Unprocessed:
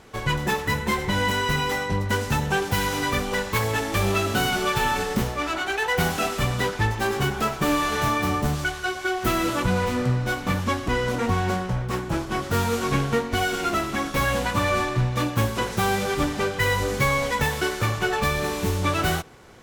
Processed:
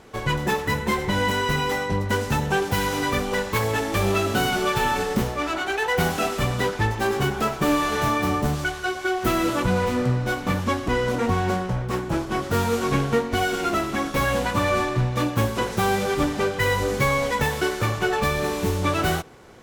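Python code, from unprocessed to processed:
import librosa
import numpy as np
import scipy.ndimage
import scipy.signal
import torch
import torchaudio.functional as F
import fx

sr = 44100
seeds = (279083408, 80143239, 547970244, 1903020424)

y = fx.peak_eq(x, sr, hz=410.0, db=3.5, octaves=2.5)
y = F.gain(torch.from_numpy(y), -1.0).numpy()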